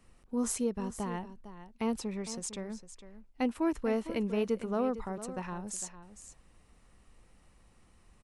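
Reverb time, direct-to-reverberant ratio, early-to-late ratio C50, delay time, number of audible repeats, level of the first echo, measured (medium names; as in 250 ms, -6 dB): no reverb, no reverb, no reverb, 455 ms, 1, -13.0 dB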